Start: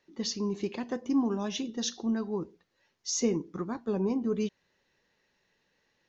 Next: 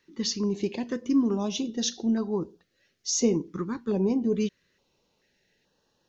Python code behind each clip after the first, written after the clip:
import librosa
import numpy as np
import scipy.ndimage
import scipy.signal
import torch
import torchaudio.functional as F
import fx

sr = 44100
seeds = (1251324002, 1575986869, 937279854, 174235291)

y = fx.filter_held_notch(x, sr, hz=2.3, low_hz=680.0, high_hz=2100.0)
y = y * 10.0 ** (4.5 / 20.0)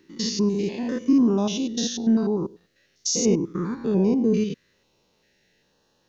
y = fx.spec_steps(x, sr, hold_ms=100)
y = y * 10.0 ** (6.5 / 20.0)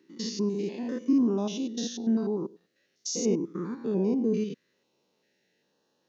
y = scipy.signal.sosfilt(scipy.signal.butter(2, 250.0, 'highpass', fs=sr, output='sos'), x)
y = fx.low_shelf(y, sr, hz=410.0, db=8.5)
y = y * 10.0 ** (-8.5 / 20.0)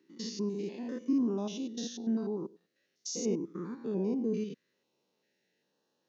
y = scipy.signal.sosfilt(scipy.signal.butter(2, 84.0, 'highpass', fs=sr, output='sos'), x)
y = y * 10.0 ** (-5.5 / 20.0)